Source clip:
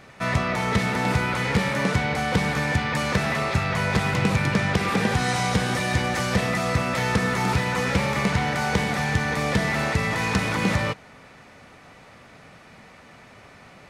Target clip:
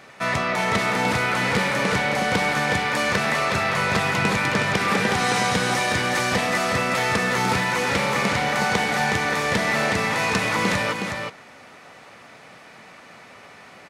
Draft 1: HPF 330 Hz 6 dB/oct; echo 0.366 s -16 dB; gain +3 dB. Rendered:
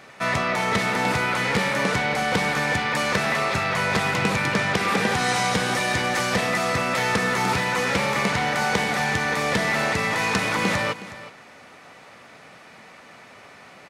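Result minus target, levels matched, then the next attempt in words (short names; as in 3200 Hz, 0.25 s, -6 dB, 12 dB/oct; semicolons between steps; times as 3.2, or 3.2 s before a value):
echo-to-direct -10.5 dB
HPF 330 Hz 6 dB/oct; echo 0.366 s -5.5 dB; gain +3 dB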